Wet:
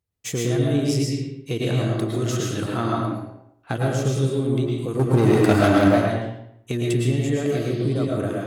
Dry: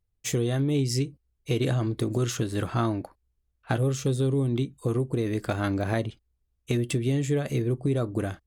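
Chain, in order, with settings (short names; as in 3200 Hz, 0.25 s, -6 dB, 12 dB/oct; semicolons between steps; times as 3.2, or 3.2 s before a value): 4.99–5.88 sample leveller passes 3; HPF 91 Hz; reverb RT60 0.70 s, pre-delay 80 ms, DRR -1 dB; 7.52–8.05 band noise 2900–4800 Hz -49 dBFS; darkening echo 0.109 s, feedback 25%, low-pass 3900 Hz, level -6.5 dB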